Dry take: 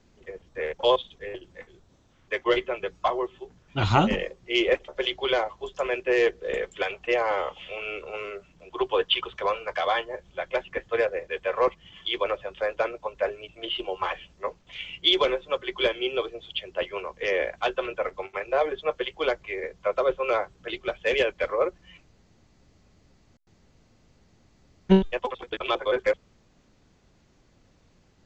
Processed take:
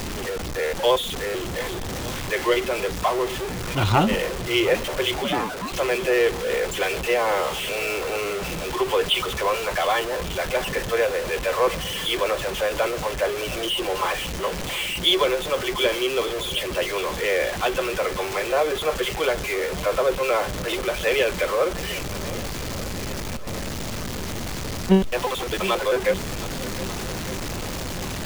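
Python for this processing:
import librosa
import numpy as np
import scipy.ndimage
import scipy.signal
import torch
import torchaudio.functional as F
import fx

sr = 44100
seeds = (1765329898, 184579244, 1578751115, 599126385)

y = x + 0.5 * 10.0 ** (-24.0 / 20.0) * np.sign(x)
y = fx.echo_swing(y, sr, ms=1192, ratio=1.5, feedback_pct=53, wet_db=-17.0)
y = fx.ring_mod(y, sr, carrier_hz=fx.line((5.23, 150.0), (5.71, 780.0)), at=(5.23, 5.71), fade=0.02)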